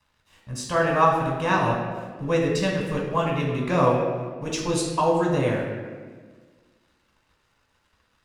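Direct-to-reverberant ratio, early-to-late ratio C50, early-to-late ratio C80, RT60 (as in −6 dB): −2.0 dB, 2.5 dB, 4.5 dB, 1.5 s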